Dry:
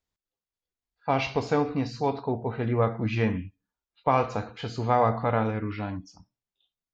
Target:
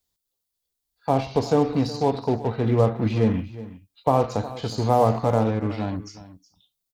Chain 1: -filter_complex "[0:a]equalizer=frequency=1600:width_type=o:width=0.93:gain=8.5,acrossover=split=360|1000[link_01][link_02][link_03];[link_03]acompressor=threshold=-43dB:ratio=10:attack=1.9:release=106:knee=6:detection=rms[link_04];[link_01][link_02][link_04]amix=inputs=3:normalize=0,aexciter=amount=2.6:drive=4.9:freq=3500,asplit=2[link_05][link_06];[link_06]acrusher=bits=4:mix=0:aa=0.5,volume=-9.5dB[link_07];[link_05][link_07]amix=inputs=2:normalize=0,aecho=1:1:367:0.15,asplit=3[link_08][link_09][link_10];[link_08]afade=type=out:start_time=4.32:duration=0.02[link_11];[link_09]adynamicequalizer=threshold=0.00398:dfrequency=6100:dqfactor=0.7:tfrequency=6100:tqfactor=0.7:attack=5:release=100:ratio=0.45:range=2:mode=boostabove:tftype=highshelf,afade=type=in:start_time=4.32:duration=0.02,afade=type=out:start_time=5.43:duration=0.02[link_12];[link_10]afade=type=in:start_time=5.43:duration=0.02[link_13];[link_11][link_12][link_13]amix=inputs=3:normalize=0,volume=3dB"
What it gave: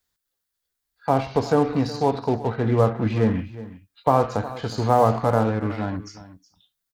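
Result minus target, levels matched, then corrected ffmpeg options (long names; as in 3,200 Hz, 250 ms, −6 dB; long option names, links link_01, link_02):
2,000 Hz band +3.5 dB
-filter_complex "[0:a]equalizer=frequency=1600:width_type=o:width=0.93:gain=-2.5,acrossover=split=360|1000[link_01][link_02][link_03];[link_03]acompressor=threshold=-43dB:ratio=10:attack=1.9:release=106:knee=6:detection=rms[link_04];[link_01][link_02][link_04]amix=inputs=3:normalize=0,aexciter=amount=2.6:drive=4.9:freq=3500,asplit=2[link_05][link_06];[link_06]acrusher=bits=4:mix=0:aa=0.5,volume=-9.5dB[link_07];[link_05][link_07]amix=inputs=2:normalize=0,aecho=1:1:367:0.15,asplit=3[link_08][link_09][link_10];[link_08]afade=type=out:start_time=4.32:duration=0.02[link_11];[link_09]adynamicequalizer=threshold=0.00398:dfrequency=6100:dqfactor=0.7:tfrequency=6100:tqfactor=0.7:attack=5:release=100:ratio=0.45:range=2:mode=boostabove:tftype=highshelf,afade=type=in:start_time=4.32:duration=0.02,afade=type=out:start_time=5.43:duration=0.02[link_12];[link_10]afade=type=in:start_time=5.43:duration=0.02[link_13];[link_11][link_12][link_13]amix=inputs=3:normalize=0,volume=3dB"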